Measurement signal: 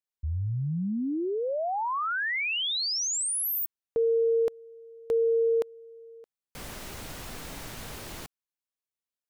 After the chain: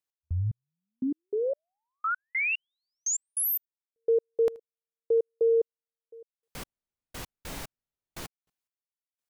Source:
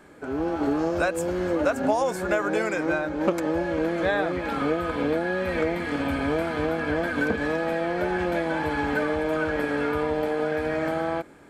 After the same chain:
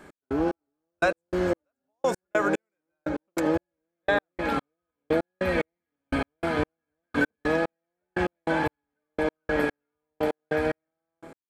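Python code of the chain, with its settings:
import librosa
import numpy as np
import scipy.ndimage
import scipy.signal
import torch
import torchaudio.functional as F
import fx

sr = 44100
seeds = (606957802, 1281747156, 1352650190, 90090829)

y = fx.echo_feedback(x, sr, ms=79, feedback_pct=40, wet_db=-23.5)
y = fx.step_gate(y, sr, bpm=147, pattern='x..xx.....', floor_db=-60.0, edge_ms=4.5)
y = y * 10.0 ** (2.0 / 20.0)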